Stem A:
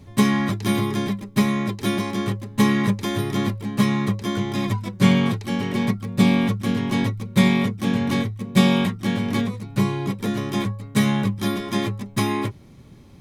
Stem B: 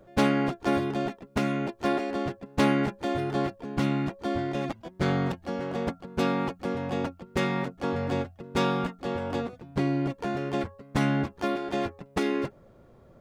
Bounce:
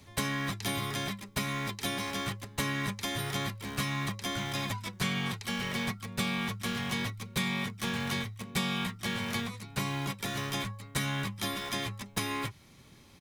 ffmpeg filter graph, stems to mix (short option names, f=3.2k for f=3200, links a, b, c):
-filter_complex "[0:a]tiltshelf=f=800:g=-7,volume=-5dB[a];[1:a]aeval=exprs='val(0)*gte(abs(val(0)),0.0224)':c=same,volume=-1,adelay=1.7,volume=-4dB[b];[a][b]amix=inputs=2:normalize=0,acrossover=split=210|700[c][d][e];[c]acompressor=threshold=-34dB:ratio=4[f];[d]acompressor=threshold=-46dB:ratio=4[g];[e]acompressor=threshold=-33dB:ratio=4[h];[f][g][h]amix=inputs=3:normalize=0"